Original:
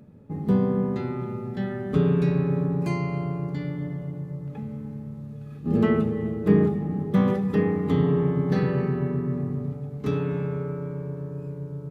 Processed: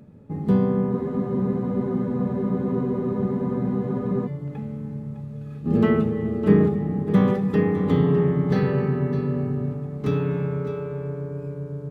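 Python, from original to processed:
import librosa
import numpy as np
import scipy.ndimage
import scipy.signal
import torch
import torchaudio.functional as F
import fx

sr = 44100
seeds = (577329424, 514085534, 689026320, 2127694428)

y = x + 10.0 ** (-11.5 / 20.0) * np.pad(x, (int(607 * sr / 1000.0), 0))[:len(x)]
y = fx.spec_freeze(y, sr, seeds[0], at_s=0.94, hold_s=3.31)
y = np.interp(np.arange(len(y)), np.arange(len(y))[::2], y[::2])
y = y * librosa.db_to_amplitude(2.0)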